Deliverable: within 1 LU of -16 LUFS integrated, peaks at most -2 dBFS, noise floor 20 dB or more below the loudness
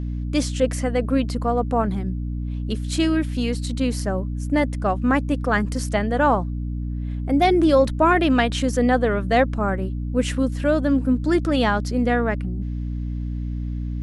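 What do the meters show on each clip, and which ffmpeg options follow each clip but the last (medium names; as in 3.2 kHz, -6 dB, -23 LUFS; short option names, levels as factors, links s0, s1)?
hum 60 Hz; highest harmonic 300 Hz; hum level -24 dBFS; loudness -22.0 LUFS; peak level -5.5 dBFS; loudness target -16.0 LUFS
-> -af "bandreject=f=60:t=h:w=6,bandreject=f=120:t=h:w=6,bandreject=f=180:t=h:w=6,bandreject=f=240:t=h:w=6,bandreject=f=300:t=h:w=6"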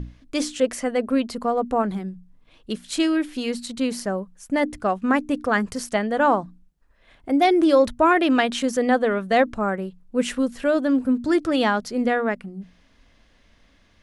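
hum not found; loudness -22.5 LUFS; peak level -6.0 dBFS; loudness target -16.0 LUFS
-> -af "volume=2.11,alimiter=limit=0.794:level=0:latency=1"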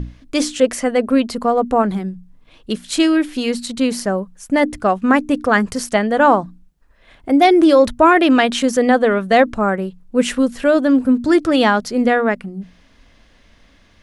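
loudness -16.0 LUFS; peak level -2.0 dBFS; noise floor -52 dBFS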